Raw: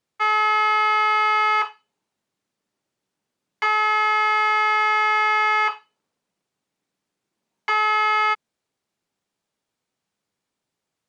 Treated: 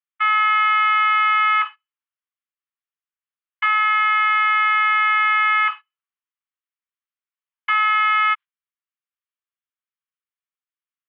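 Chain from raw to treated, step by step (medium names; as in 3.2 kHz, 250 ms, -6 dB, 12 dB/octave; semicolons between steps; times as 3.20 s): gate -33 dBFS, range -16 dB; elliptic band-pass 1.1–3.2 kHz, stop band 60 dB; trim +3.5 dB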